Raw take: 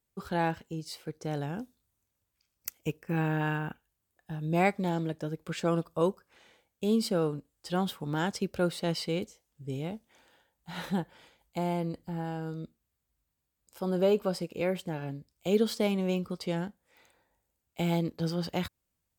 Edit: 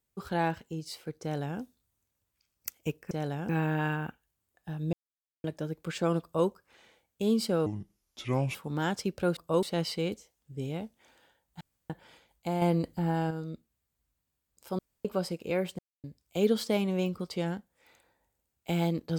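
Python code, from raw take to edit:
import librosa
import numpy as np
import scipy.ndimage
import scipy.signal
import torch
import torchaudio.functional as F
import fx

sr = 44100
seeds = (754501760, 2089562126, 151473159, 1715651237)

y = fx.edit(x, sr, fx.duplicate(start_s=1.22, length_s=0.38, to_s=3.11),
    fx.silence(start_s=4.55, length_s=0.51),
    fx.duplicate(start_s=5.84, length_s=0.26, to_s=8.73),
    fx.speed_span(start_s=7.28, length_s=0.63, speed=0.71),
    fx.room_tone_fill(start_s=10.71, length_s=0.29),
    fx.clip_gain(start_s=11.72, length_s=0.69, db=6.0),
    fx.room_tone_fill(start_s=13.89, length_s=0.26),
    fx.silence(start_s=14.89, length_s=0.25), tone=tone)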